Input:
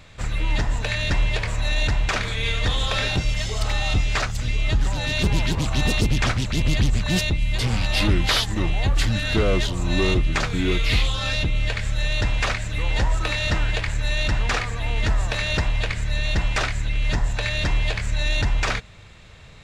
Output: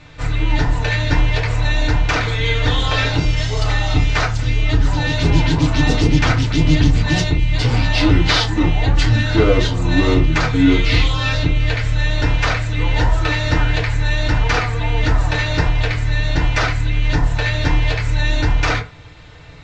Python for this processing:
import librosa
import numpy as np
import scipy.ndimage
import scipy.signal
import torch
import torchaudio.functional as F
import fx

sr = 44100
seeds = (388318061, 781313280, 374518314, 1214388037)

y = scipy.signal.sosfilt(scipy.signal.butter(4, 6500.0, 'lowpass', fs=sr, output='sos'), x)
y = fx.rev_fdn(y, sr, rt60_s=0.31, lf_ratio=1.0, hf_ratio=0.55, size_ms=20.0, drr_db=-3.5)
y = y * librosa.db_to_amplitude(1.0)